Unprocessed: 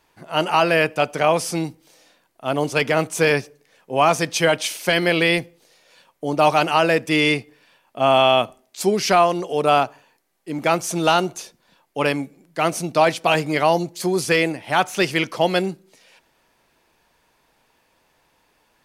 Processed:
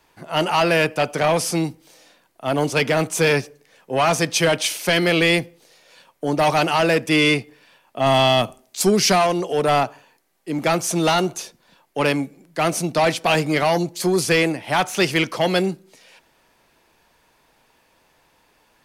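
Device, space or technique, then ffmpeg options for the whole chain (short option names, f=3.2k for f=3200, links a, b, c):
one-band saturation: -filter_complex "[0:a]acrossover=split=240|3200[a][b][c];[b]asoftclip=type=tanh:threshold=-16.5dB[d];[a][d][c]amix=inputs=3:normalize=0,asettb=1/sr,asplit=3[e][f][g];[e]atrim=end=8.064[h];[f]atrim=start=8.06:end=9.27,asetpts=PTS-STARTPTS,afade=t=in:d=0.004:c=qsin,afade=t=out:st=1.206:d=0.004:c=qsin,bass=f=250:g=4,treble=f=4k:g=4[i];[g]atrim=start=9.266[j];[h][i]acrossfade=d=0.004:c1=hsin:c2=qsin[k];[k][j]acrossfade=d=0.004:c1=qsin:c2=hsin,volume=3dB"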